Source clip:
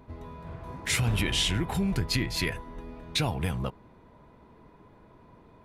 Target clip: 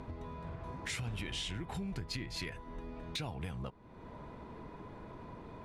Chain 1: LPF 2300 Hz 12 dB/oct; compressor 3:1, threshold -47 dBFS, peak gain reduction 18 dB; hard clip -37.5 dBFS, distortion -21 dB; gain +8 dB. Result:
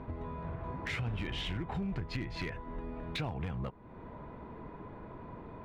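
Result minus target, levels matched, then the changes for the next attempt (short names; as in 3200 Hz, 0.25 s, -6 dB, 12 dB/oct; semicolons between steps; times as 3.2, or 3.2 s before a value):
8000 Hz band -13.5 dB; compressor: peak gain reduction -4 dB
change: LPF 8800 Hz 12 dB/oct; change: compressor 3:1, threshold -53 dBFS, peak gain reduction 22 dB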